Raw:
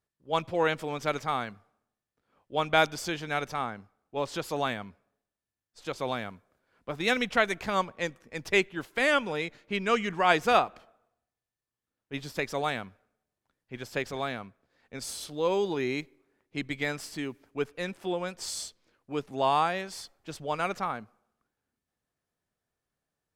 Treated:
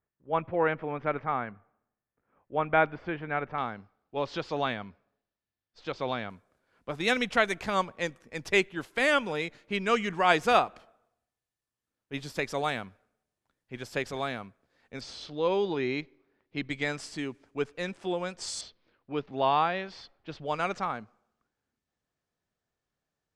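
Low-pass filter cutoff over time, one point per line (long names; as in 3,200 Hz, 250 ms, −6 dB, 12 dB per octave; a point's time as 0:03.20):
low-pass filter 24 dB per octave
2,200 Hz
from 0:03.58 5,000 Hz
from 0:06.30 12,000 Hz
from 0:15.01 5,000 Hz
from 0:16.70 8,800 Hz
from 0:18.61 4,300 Hz
from 0:20.46 7,700 Hz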